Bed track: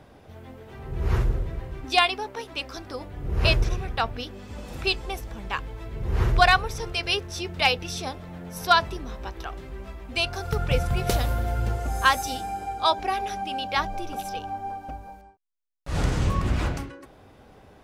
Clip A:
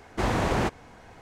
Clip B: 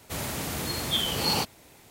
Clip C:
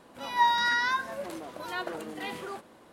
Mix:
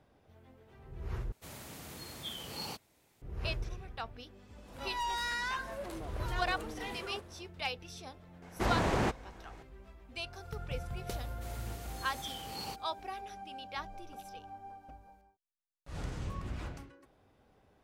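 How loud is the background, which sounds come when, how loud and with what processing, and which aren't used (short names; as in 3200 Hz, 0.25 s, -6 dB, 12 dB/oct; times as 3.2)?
bed track -15.5 dB
1.32 replace with B -15.5 dB
4.6 add C -3.5 dB, fades 0.10 s + soft clip -29.5 dBFS
8.42 add A -5 dB
11.31 add B -17 dB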